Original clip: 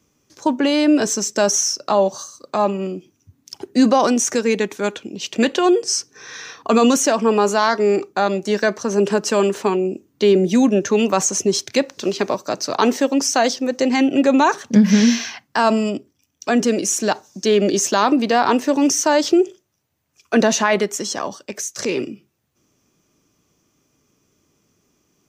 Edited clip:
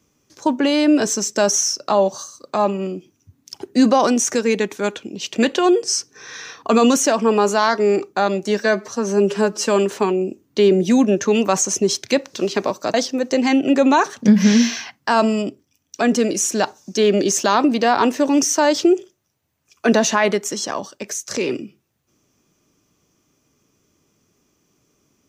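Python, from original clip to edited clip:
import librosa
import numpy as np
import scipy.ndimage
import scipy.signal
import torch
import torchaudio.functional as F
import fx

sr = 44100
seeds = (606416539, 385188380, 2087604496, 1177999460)

y = fx.edit(x, sr, fx.stretch_span(start_s=8.59, length_s=0.72, factor=1.5),
    fx.cut(start_s=12.58, length_s=0.84), tone=tone)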